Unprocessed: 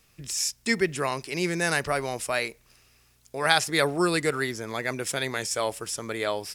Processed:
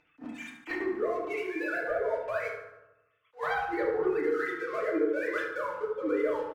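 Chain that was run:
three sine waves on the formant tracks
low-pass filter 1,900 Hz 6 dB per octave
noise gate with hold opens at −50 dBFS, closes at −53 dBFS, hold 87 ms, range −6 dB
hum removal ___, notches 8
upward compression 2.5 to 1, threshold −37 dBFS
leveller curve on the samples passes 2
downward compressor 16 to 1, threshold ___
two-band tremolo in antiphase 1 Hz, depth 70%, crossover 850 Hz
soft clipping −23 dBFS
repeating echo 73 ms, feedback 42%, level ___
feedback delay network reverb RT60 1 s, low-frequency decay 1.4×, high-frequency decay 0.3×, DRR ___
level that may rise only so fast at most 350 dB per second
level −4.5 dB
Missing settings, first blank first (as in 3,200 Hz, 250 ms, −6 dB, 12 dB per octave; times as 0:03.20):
193.5 Hz, −25 dBFS, −9 dB, −5 dB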